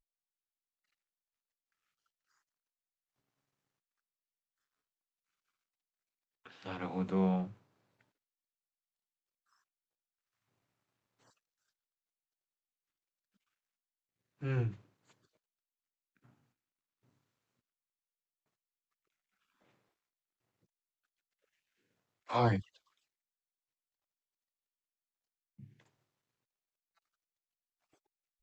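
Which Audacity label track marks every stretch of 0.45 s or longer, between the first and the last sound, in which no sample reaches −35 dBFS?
7.440000	14.430000	silence
14.690000	22.300000	silence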